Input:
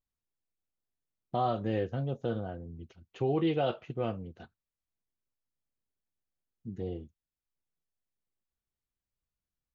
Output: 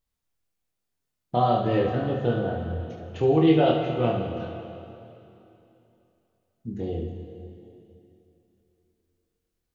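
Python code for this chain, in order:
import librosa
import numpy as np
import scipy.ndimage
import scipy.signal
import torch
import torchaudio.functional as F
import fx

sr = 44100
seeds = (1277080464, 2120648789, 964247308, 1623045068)

y = fx.room_early_taps(x, sr, ms=(25, 71), db=(-4.5, -8.5))
y = fx.rev_plate(y, sr, seeds[0], rt60_s=3.0, hf_ratio=0.95, predelay_ms=0, drr_db=4.0)
y = y * librosa.db_to_amplitude(5.5)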